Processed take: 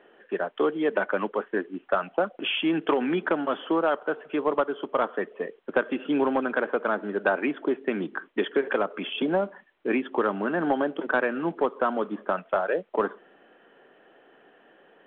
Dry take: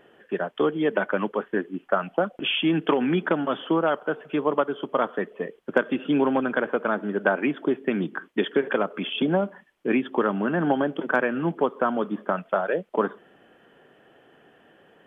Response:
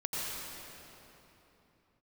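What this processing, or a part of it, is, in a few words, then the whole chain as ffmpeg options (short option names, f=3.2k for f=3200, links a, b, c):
telephone: -af "highpass=270,lowpass=3.2k,asoftclip=type=tanh:threshold=-11dB" -ar 8000 -c:a pcm_mulaw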